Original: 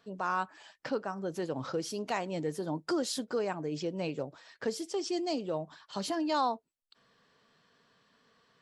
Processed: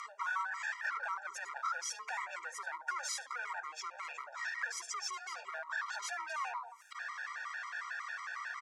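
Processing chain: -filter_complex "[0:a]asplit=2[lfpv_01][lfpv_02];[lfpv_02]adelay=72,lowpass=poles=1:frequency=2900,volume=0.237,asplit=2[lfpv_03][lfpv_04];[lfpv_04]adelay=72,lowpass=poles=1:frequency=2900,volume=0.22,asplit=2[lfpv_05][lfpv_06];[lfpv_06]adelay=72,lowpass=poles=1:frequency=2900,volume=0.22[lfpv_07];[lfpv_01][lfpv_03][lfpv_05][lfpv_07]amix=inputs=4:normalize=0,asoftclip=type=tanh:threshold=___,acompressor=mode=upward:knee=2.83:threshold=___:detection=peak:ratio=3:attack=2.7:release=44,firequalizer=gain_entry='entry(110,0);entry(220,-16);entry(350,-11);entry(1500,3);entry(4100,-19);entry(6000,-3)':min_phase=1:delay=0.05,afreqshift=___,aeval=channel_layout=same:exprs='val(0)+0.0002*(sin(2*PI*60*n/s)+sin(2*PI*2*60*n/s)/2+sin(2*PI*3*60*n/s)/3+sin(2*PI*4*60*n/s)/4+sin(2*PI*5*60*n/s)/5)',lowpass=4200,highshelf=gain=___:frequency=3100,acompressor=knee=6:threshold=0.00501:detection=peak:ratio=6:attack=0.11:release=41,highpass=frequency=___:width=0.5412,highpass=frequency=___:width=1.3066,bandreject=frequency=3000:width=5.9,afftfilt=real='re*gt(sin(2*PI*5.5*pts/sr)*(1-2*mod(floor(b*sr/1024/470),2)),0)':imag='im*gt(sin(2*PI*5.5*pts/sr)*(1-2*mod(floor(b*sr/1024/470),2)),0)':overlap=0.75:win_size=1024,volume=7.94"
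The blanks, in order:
0.02, 0.00631, 25, 7.5, 880, 880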